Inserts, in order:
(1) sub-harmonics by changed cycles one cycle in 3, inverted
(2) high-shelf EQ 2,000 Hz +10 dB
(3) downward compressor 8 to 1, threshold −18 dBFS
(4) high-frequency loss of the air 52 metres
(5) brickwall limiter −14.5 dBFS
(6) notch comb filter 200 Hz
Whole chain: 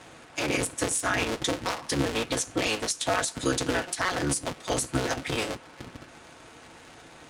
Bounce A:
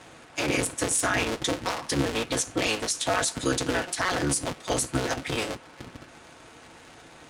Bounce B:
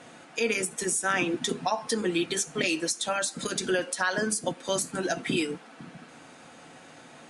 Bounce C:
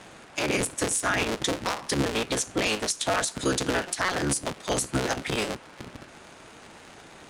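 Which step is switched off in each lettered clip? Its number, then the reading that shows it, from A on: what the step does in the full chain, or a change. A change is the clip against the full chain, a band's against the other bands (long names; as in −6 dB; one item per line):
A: 3, average gain reduction 3.0 dB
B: 1, 125 Hz band −5.5 dB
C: 6, change in crest factor −3.0 dB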